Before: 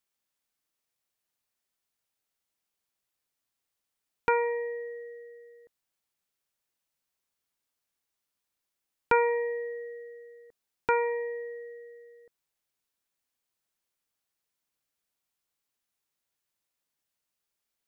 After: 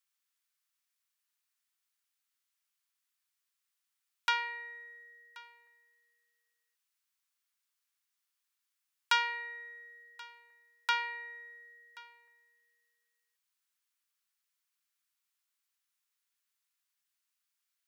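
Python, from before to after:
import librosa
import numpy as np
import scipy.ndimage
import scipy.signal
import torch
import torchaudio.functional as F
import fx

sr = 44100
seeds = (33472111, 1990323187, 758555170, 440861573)

y = fx.tracing_dist(x, sr, depth_ms=0.19)
y = scipy.signal.sosfilt(scipy.signal.butter(4, 1100.0, 'highpass', fs=sr, output='sos'), y)
y = y + 10.0 ** (-21.5 / 20.0) * np.pad(y, (int(1080 * sr / 1000.0), 0))[:len(y)]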